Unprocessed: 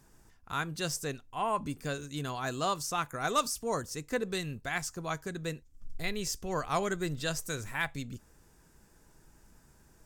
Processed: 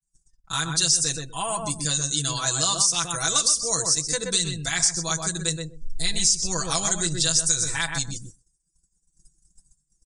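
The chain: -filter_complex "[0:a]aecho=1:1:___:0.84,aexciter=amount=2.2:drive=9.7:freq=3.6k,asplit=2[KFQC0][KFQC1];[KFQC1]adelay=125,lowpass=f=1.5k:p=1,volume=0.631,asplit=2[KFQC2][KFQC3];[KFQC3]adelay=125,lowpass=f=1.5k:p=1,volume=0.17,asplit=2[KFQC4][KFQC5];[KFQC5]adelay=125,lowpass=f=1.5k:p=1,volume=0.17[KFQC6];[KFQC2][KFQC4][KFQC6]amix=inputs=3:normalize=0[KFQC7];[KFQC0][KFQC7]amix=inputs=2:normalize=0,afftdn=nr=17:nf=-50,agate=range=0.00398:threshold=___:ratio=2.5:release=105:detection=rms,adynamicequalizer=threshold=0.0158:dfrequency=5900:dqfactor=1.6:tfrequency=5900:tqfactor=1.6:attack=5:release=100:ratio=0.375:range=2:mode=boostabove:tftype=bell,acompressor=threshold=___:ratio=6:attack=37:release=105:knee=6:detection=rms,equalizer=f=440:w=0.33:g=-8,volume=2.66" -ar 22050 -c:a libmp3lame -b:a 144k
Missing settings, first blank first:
6.1, 0.00562, 0.0447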